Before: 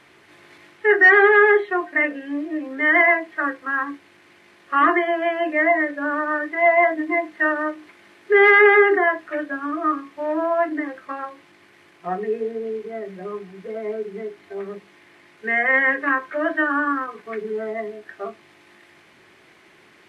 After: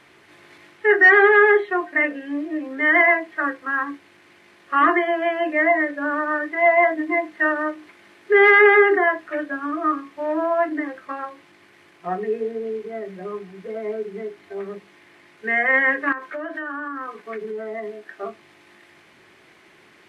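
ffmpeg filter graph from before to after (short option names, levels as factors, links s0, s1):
-filter_complex "[0:a]asettb=1/sr,asplit=3[s0][s1][s2];[s0]atrim=end=16.124[s3];[s1]atrim=start=16.12:end=18.23,asetpts=PTS-STARTPTS,afade=t=in:d=0.004:c=qsin,afade=t=out:st=2.106:d=0.004:c=qsin,highpass=170,acompressor=threshold=0.0501:ratio=10:attack=3.2:release=140:knee=1:detection=peak[s4];[s2]atrim=start=18.226[s5];[s3][s4]acrossfade=d=0.004:c1=hsin:c2=qsin[s6];[s6][s5]acrossfade=d=0.004:c1=qsin:c2=hsin"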